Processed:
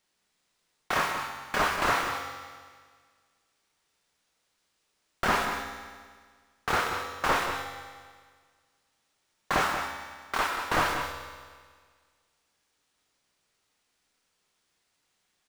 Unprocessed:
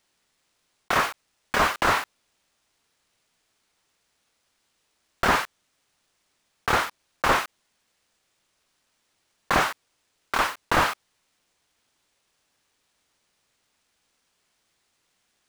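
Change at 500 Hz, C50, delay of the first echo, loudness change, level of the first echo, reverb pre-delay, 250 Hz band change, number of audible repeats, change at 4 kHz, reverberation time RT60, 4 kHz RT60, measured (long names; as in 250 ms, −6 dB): −3.5 dB, 3.5 dB, 182 ms, −4.5 dB, −9.0 dB, 5 ms, −4.0 dB, 1, −3.5 dB, 1.7 s, 1.7 s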